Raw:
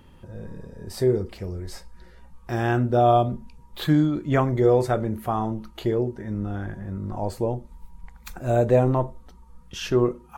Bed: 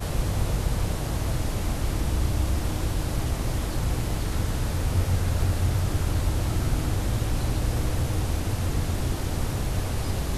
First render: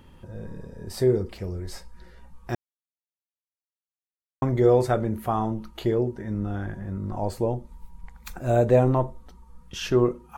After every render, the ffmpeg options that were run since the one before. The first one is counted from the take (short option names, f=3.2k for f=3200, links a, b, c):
-filter_complex "[0:a]asplit=3[a][b][c];[a]atrim=end=2.55,asetpts=PTS-STARTPTS,afade=t=out:st=2.546:d=0.004:c=hsin[d];[b]atrim=start=2.55:end=4.42,asetpts=PTS-STARTPTS,volume=0[e];[c]atrim=start=4.42,asetpts=PTS-STARTPTS,afade=t=in:d=0.004:c=hsin[f];[d][e][f]concat=n=3:v=0:a=1"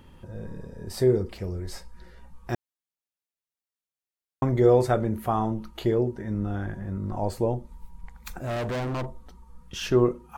-filter_complex "[0:a]asettb=1/sr,asplit=3[a][b][c];[a]atrim=end=8.374[d];[b]atrim=start=8.37:end=9.89,asetpts=PTS-STARTPTS,afade=t=in:d=0.004:c=qsin,afade=t=out:st=1.516:d=0.004:c=qsin,volume=27.5dB,asoftclip=hard,volume=-27.5dB[e];[c]atrim=start=9.886[f];[d][e]acrossfade=d=0.004:c1=hsin:c2=qsin[g];[g][f]acrossfade=d=0.004:c1=qsin:c2=hsin"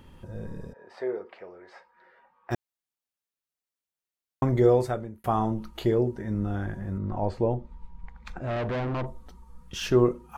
-filter_complex "[0:a]asplit=3[a][b][c];[a]afade=t=out:st=0.72:d=0.02[d];[b]asuperpass=centerf=1100:order=4:qfactor=0.68,afade=t=in:st=0.72:d=0.02,afade=t=out:st=2.5:d=0.02[e];[c]afade=t=in:st=2.5:d=0.02[f];[d][e][f]amix=inputs=3:normalize=0,asettb=1/sr,asplit=3[g][h][i];[g]atrim=end=6.984[j];[h]atrim=start=6.98:end=9.06,asetpts=PTS-STARTPTS,afade=t=in:d=0.004:c=qsin,afade=t=out:st=2.076:d=0.004:c=qsin,lowpass=3.3k[k];[i]atrim=start=9.056[l];[j][k]acrossfade=d=0.004:c1=hsin:c2=qsin[m];[m][l]acrossfade=d=0.004:c1=qsin:c2=hsin,asplit=2[n][o];[n]atrim=end=5.24,asetpts=PTS-STARTPTS,afade=t=out:st=4.59:d=0.65[p];[o]atrim=start=5.24,asetpts=PTS-STARTPTS,afade=t=in:d=0.004:c=hsin[q];[p][q]concat=n=2:v=0:a=1"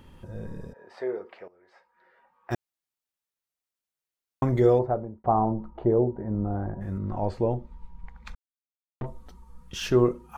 -filter_complex "[0:a]asplit=3[a][b][c];[a]afade=t=out:st=4.78:d=0.02[d];[b]lowpass=f=820:t=q:w=1.7,afade=t=in:st=4.78:d=0.02,afade=t=out:st=6.8:d=0.02[e];[c]afade=t=in:st=6.8:d=0.02[f];[d][e][f]amix=inputs=3:normalize=0,asplit=4[g][h][i][j];[g]atrim=end=1.48,asetpts=PTS-STARTPTS,afade=t=out:st=1.476:d=0.004:c=hsin:silence=0.158489[k];[h]atrim=start=1.48:end=8.35,asetpts=PTS-STARTPTS,afade=t=in:d=1.05:silence=0.158489,afade=t=out:st=6.866:d=0.004:c=hsin[l];[i]atrim=start=8.35:end=9.01,asetpts=PTS-STARTPTS,volume=0[m];[j]atrim=start=9.01,asetpts=PTS-STARTPTS,afade=t=in:d=0.004:c=hsin[n];[k][l][m][n]concat=n=4:v=0:a=1"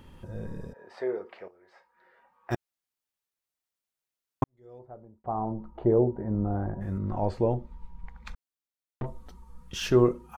-filter_complex "[0:a]asplit=3[a][b][c];[a]afade=t=out:st=1.29:d=0.02[d];[b]asplit=2[e][f];[f]adelay=31,volume=-13.5dB[g];[e][g]amix=inputs=2:normalize=0,afade=t=in:st=1.29:d=0.02,afade=t=out:st=2.54:d=0.02[h];[c]afade=t=in:st=2.54:d=0.02[i];[d][h][i]amix=inputs=3:normalize=0,asplit=2[j][k];[j]atrim=end=4.44,asetpts=PTS-STARTPTS,afade=t=out:st=4.436:d=0.004:c=hsin[l];[k]atrim=start=4.44,asetpts=PTS-STARTPTS,afade=t=in:d=1.48:c=qua[m];[l][m]concat=n=2:v=0:a=1"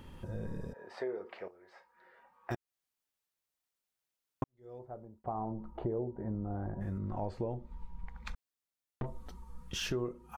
-af "acompressor=threshold=-35dB:ratio=4"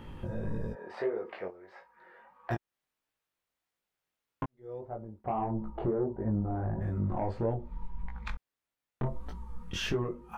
-filter_complex "[0:a]acrossover=split=3200[a][b];[a]aeval=exprs='0.0944*sin(PI/2*1.78*val(0)/0.0944)':c=same[c];[c][b]amix=inputs=2:normalize=0,flanger=delay=17.5:depth=5.4:speed=1.6"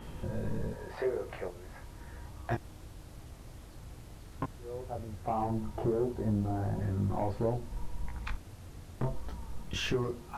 -filter_complex "[1:a]volume=-22dB[a];[0:a][a]amix=inputs=2:normalize=0"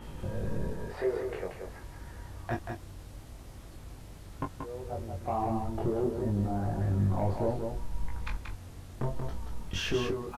-filter_complex "[0:a]asplit=2[a][b];[b]adelay=21,volume=-8dB[c];[a][c]amix=inputs=2:normalize=0,asplit=2[d][e];[e]aecho=0:1:182:0.531[f];[d][f]amix=inputs=2:normalize=0"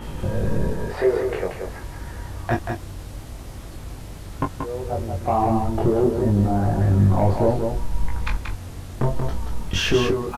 -af "volume=11dB"